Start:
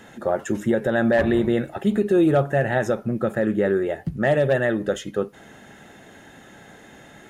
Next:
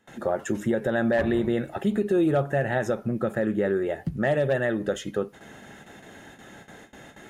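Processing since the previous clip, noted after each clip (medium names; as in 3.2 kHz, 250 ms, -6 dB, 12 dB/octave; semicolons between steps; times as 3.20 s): gate with hold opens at -36 dBFS; in parallel at +3 dB: compression, threshold -26 dBFS, peak gain reduction 11.5 dB; on the sum: trim -7.5 dB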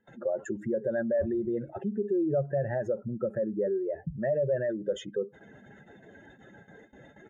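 spectral contrast enhancement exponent 2; comb 2 ms, depth 32%; trim -5 dB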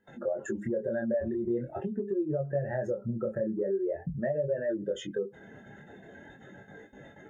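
compression, threshold -30 dBFS, peak gain reduction 7 dB; chorus 0.44 Hz, delay 20 ms, depth 7.2 ms; trim +5.5 dB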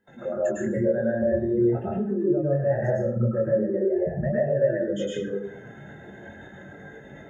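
reverberation RT60 0.60 s, pre-delay 98 ms, DRR -5.5 dB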